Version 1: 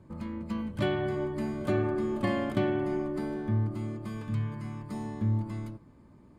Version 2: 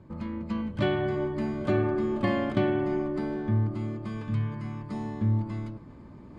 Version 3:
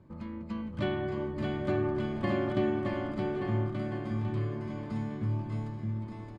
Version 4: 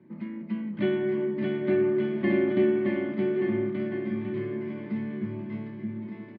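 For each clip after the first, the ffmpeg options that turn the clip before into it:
-af "lowpass=5.3k,areverse,acompressor=mode=upward:threshold=-41dB:ratio=2.5,areverse,volume=2.5dB"
-af "aecho=1:1:620|1178|1680|2132|2539:0.631|0.398|0.251|0.158|0.1,volume=-5.5dB"
-filter_complex "[0:a]highpass=f=150:w=0.5412,highpass=f=150:w=1.3066,equalizer=f=210:t=q:w=4:g=8,equalizer=f=360:t=q:w=4:g=9,equalizer=f=510:t=q:w=4:g=-6,equalizer=f=770:t=q:w=4:g=-4,equalizer=f=1.2k:t=q:w=4:g=-8,equalizer=f=2k:t=q:w=4:g=9,lowpass=f=3.5k:w=0.5412,lowpass=f=3.5k:w=1.3066,asplit=2[a][b];[b]adelay=29,volume=-8dB[c];[a][c]amix=inputs=2:normalize=0"

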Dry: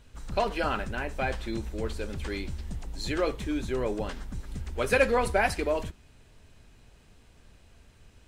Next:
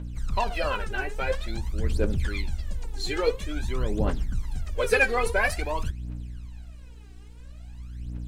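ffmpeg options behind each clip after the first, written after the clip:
-af "aeval=exprs='val(0)+0.00631*(sin(2*PI*60*n/s)+sin(2*PI*2*60*n/s)/2+sin(2*PI*3*60*n/s)/3+sin(2*PI*4*60*n/s)/4+sin(2*PI*5*60*n/s)/5)':c=same,aphaser=in_gain=1:out_gain=1:delay=2.7:decay=0.78:speed=0.49:type=triangular,volume=-1.5dB"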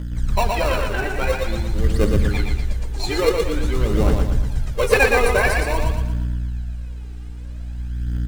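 -filter_complex "[0:a]asplit=2[a][b];[b]acrusher=samples=27:mix=1:aa=0.000001,volume=-5.5dB[c];[a][c]amix=inputs=2:normalize=0,aecho=1:1:117|234|351|468|585|702:0.631|0.284|0.128|0.0575|0.0259|0.0116,volume=3.5dB"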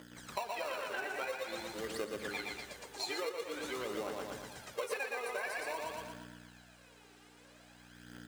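-af "highpass=480,acompressor=threshold=-29dB:ratio=10,volume=-6dB"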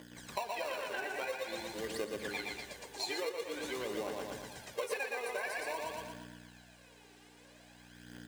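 -af "bandreject=f=1.3k:w=5.1,volume=1dB"

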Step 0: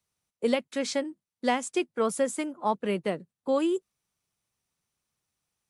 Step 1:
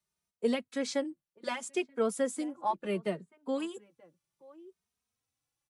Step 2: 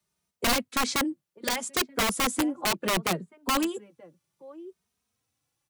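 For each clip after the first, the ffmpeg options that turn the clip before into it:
-filter_complex "[0:a]asplit=2[a][b];[b]adelay=932.9,volume=-22dB,highshelf=f=4k:g=-21[c];[a][c]amix=inputs=2:normalize=0,asplit=2[d][e];[e]adelay=2.9,afreqshift=0.67[f];[d][f]amix=inputs=2:normalize=1,volume=-2dB"
-filter_complex "[0:a]highpass=f=77:p=1,lowshelf=f=450:g=4.5,acrossover=split=140[a][b];[b]aeval=exprs='(mod(18.8*val(0)+1,2)-1)/18.8':c=same[c];[a][c]amix=inputs=2:normalize=0,volume=6.5dB"

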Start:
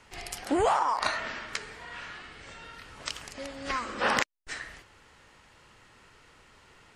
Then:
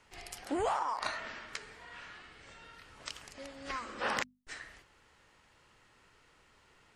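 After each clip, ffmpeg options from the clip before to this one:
-af "bandreject=f=50:t=h:w=6,bandreject=f=100:t=h:w=6,bandreject=f=150:t=h:w=6,bandreject=f=200:t=h:w=6,bandreject=f=250:t=h:w=6,volume=-7.5dB"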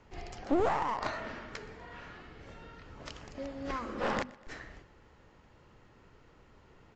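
-af "tiltshelf=f=970:g=8,aresample=16000,aeval=exprs='clip(val(0),-1,0.0168)':c=same,aresample=44100,aecho=1:1:122|244|366|488:0.0794|0.0445|0.0249|0.0139,volume=3dB"

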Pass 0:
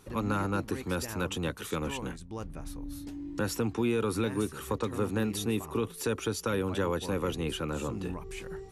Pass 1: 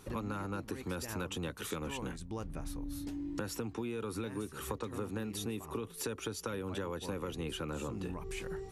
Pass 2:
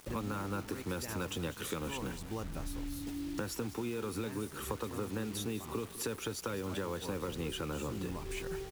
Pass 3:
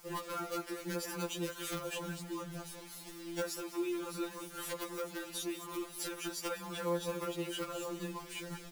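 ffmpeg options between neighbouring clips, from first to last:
-af "acompressor=threshold=-37dB:ratio=6,volume=1.5dB"
-filter_complex "[0:a]asplit=2[a][b];[b]acrusher=bits=4:mode=log:mix=0:aa=0.000001,volume=-9dB[c];[a][c]amix=inputs=2:normalize=0,aecho=1:1:202|404|606:0.178|0.064|0.023,acrusher=bits=7:mix=0:aa=0.000001,volume=-2dB"
-filter_complex "[0:a]acrossover=split=260[a][b];[a]flanger=delay=1.7:depth=1.6:regen=-39:speed=0.45:shape=sinusoidal[c];[b]aeval=exprs='(mod(26.6*val(0)+1,2)-1)/26.6':c=same[d];[c][d]amix=inputs=2:normalize=0,afftfilt=real='re*2.83*eq(mod(b,8),0)':imag='im*2.83*eq(mod(b,8),0)':win_size=2048:overlap=0.75,volume=2.5dB"

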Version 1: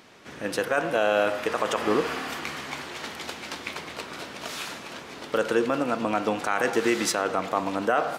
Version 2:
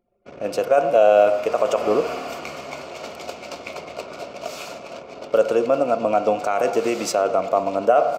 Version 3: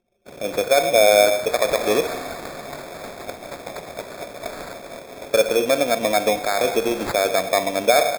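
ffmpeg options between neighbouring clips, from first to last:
-af "anlmdn=0.251,superequalizer=7b=1.78:8b=3.55:11b=0.316:13b=0.562:16b=0.501"
-af "acrusher=samples=15:mix=1:aa=0.000001"

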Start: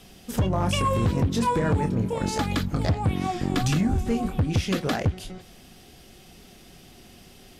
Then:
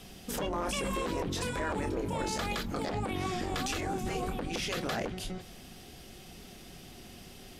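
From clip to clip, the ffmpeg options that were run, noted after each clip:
-af "afftfilt=real='re*lt(hypot(re,im),0.282)':imag='im*lt(hypot(re,im),0.282)':win_size=1024:overlap=0.75,alimiter=level_in=0.5dB:limit=-24dB:level=0:latency=1:release=18,volume=-0.5dB"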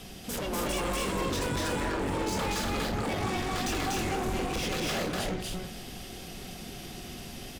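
-filter_complex "[0:a]asoftclip=type=hard:threshold=-36dB,asplit=2[a][b];[b]aecho=0:1:242|288.6:0.891|0.501[c];[a][c]amix=inputs=2:normalize=0,volume=4.5dB"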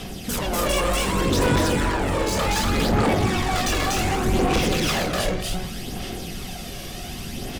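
-af "aphaser=in_gain=1:out_gain=1:delay=1.8:decay=0.41:speed=0.66:type=sinusoidal,volume=7.5dB"

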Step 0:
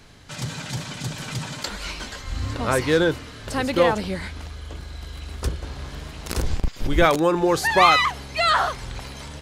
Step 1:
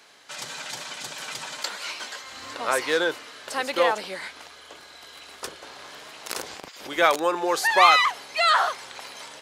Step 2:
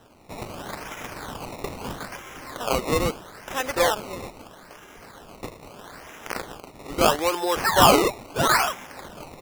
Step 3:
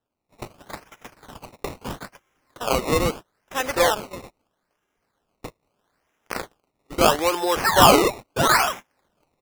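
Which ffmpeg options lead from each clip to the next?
-af "highpass=560"
-af "acrusher=samples=19:mix=1:aa=0.000001:lfo=1:lforange=19:lforate=0.77"
-af "agate=range=-31dB:threshold=-33dB:ratio=16:detection=peak,volume=2dB"

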